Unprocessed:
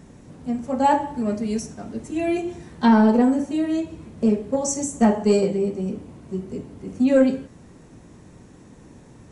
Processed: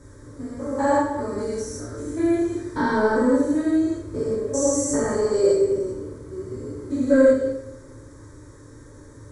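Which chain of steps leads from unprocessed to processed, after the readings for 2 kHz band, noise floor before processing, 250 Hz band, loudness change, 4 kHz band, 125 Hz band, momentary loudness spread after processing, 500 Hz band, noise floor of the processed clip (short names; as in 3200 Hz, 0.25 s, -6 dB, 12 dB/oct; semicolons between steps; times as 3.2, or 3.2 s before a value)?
+2.5 dB, -48 dBFS, -2.5 dB, -0.5 dB, -3.0 dB, -3.0 dB, 15 LU, +3.0 dB, -45 dBFS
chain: stepped spectrum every 0.2 s; fixed phaser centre 740 Hz, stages 6; two-slope reverb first 0.55 s, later 1.6 s, DRR -6.5 dB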